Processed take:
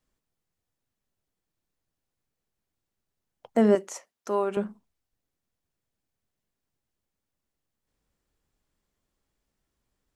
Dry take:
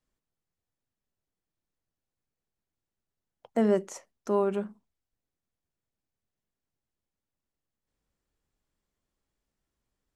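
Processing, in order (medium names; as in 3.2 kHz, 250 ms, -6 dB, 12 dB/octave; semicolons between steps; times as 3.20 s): 3.75–4.57 s: high-pass 620 Hz 6 dB/octave; trim +4 dB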